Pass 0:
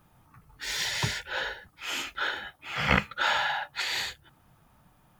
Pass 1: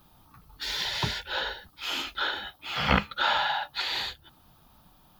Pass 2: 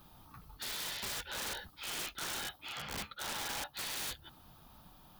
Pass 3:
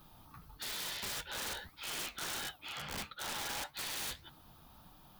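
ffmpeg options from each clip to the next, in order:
-filter_complex "[0:a]equalizer=f=125:t=o:w=1:g=-7,equalizer=f=500:t=o:w=1:g=-4,equalizer=f=2k:t=o:w=1:g=-9,equalizer=f=4k:t=o:w=1:g=8,equalizer=f=8k:t=o:w=1:g=-10,acrossover=split=2700[a][b];[b]acompressor=threshold=-43dB:ratio=6[c];[a][c]amix=inputs=2:normalize=0,highshelf=f=5.5k:g=6,volume=5dB"
-af "areverse,acompressor=threshold=-35dB:ratio=16,areverse,aeval=exprs='(mod(47.3*val(0)+1,2)-1)/47.3':c=same"
-af "flanger=delay=6.2:depth=7.7:regen=79:speed=1.6:shape=sinusoidal,volume=4dB"

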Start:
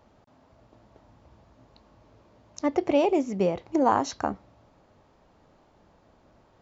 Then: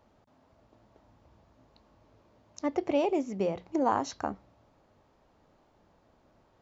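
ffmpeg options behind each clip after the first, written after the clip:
-af "bandreject=f=60:t=h:w=6,bandreject=f=120:t=h:w=6,bandreject=f=180:t=h:w=6,volume=-5dB"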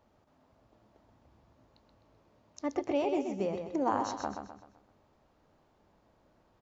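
-af "aecho=1:1:128|256|384|512|640:0.473|0.194|0.0795|0.0326|0.0134,volume=-3.5dB"

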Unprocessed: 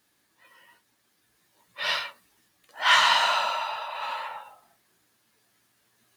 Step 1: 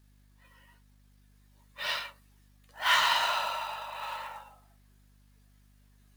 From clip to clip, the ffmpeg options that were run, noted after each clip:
-af "aeval=exprs='val(0)+0.00178*(sin(2*PI*50*n/s)+sin(2*PI*2*50*n/s)/2+sin(2*PI*3*50*n/s)/3+sin(2*PI*4*50*n/s)/4+sin(2*PI*5*50*n/s)/5)':c=same,acrusher=bits=4:mode=log:mix=0:aa=0.000001,volume=-5.5dB"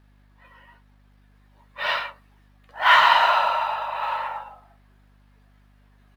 -af "firequalizer=gain_entry='entry(150,0);entry(730,8);entry(6500,-12)':delay=0.05:min_phase=1,volume=5dB"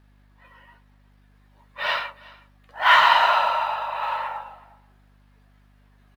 -af "aecho=1:1:367:0.0708"

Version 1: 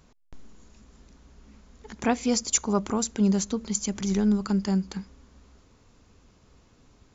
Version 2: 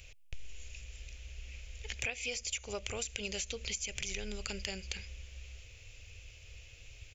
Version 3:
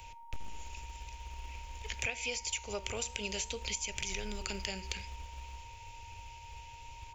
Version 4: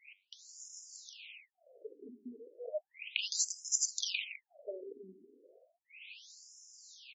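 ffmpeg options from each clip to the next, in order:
-filter_complex "[0:a]acrossover=split=2600[a][b];[b]acompressor=threshold=-34dB:ratio=4:attack=1:release=60[c];[a][c]amix=inputs=2:normalize=0,firequalizer=gain_entry='entry(100,0);entry(180,-29);entry(520,-7);entry(990,-22);entry(2500,12);entry(4000,-1);entry(7700,2)':delay=0.05:min_phase=1,acompressor=threshold=-41dB:ratio=12,volume=7dB"
-filter_complex "[0:a]aeval=exprs='val(0)+0.00282*sin(2*PI*930*n/s)':c=same,flanger=delay=9:depth=8.4:regen=-87:speed=0.52:shape=triangular,acrossover=split=130|510|2800[a][b][c][d];[a]acrusher=bits=4:mode=log:mix=0:aa=0.000001[e];[e][b][c][d]amix=inputs=4:normalize=0,volume=5.5dB"
-af "asuperstop=centerf=1200:order=20:qfactor=0.86,aecho=1:1:326:0.335,afftfilt=real='re*between(b*sr/1024,290*pow(7200/290,0.5+0.5*sin(2*PI*0.34*pts/sr))/1.41,290*pow(7200/290,0.5+0.5*sin(2*PI*0.34*pts/sr))*1.41)':imag='im*between(b*sr/1024,290*pow(7200/290,0.5+0.5*sin(2*PI*0.34*pts/sr))/1.41,290*pow(7200/290,0.5+0.5*sin(2*PI*0.34*pts/sr))*1.41)':win_size=1024:overlap=0.75,volume=6.5dB"

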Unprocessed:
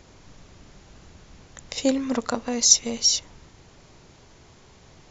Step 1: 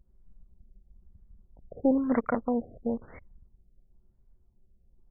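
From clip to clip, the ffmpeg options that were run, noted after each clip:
-af "asoftclip=type=hard:threshold=-17dB,anlmdn=3.98,afftfilt=real='re*lt(b*sr/1024,720*pow(2400/720,0.5+0.5*sin(2*PI*1*pts/sr)))':imag='im*lt(b*sr/1024,720*pow(2400/720,0.5+0.5*sin(2*PI*1*pts/sr)))':win_size=1024:overlap=0.75"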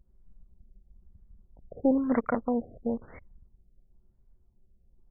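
-af anull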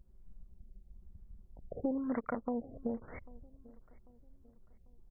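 -filter_complex "[0:a]acompressor=threshold=-37dB:ratio=3,asplit=2[a][b];[b]adelay=794,lowpass=f=2k:p=1,volume=-22dB,asplit=2[c][d];[d]adelay=794,lowpass=f=2k:p=1,volume=0.41,asplit=2[e][f];[f]adelay=794,lowpass=f=2k:p=1,volume=0.41[g];[a][c][e][g]amix=inputs=4:normalize=0,volume=1.5dB"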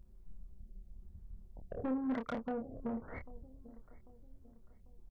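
-filter_complex "[0:a]asoftclip=type=tanh:threshold=-33.5dB,asplit=2[a][b];[b]adelay=27,volume=-5.5dB[c];[a][c]amix=inputs=2:normalize=0,volume=1.5dB"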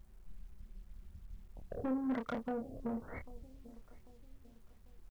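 -af "acrusher=bits=11:mix=0:aa=0.000001"

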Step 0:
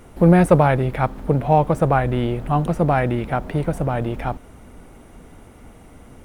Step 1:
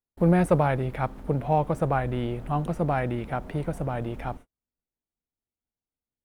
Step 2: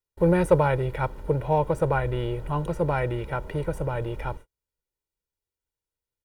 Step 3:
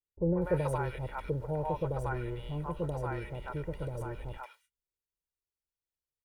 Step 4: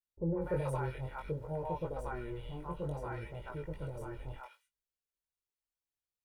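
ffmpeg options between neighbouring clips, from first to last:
-af "agate=range=-46dB:threshold=-33dB:ratio=16:detection=peak,volume=-7.5dB"
-af "aecho=1:1:2.1:0.72"
-filter_complex "[0:a]acrossover=split=650|2000[a][b][c];[b]adelay=140[d];[c]adelay=240[e];[a][d][e]amix=inputs=3:normalize=0,volume=-8dB"
-af "flanger=delay=17.5:depth=5.6:speed=0.59,volume=-1.5dB"

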